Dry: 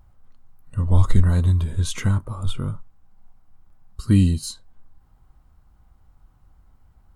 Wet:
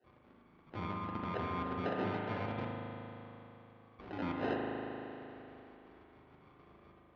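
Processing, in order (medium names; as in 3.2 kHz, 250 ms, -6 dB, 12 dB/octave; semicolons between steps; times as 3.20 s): random holes in the spectrogram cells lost 31%; compressor with a negative ratio -25 dBFS, ratio -1; peak limiter -20 dBFS, peak gain reduction 9 dB; valve stage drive 27 dB, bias 0.3; 2.59–4.21 s: static phaser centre 950 Hz, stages 8; sample-and-hold 39×; band-pass 240–4600 Hz; distance through air 290 m; spring tank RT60 3.4 s, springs 38 ms, chirp 45 ms, DRR -1.5 dB; trim +2 dB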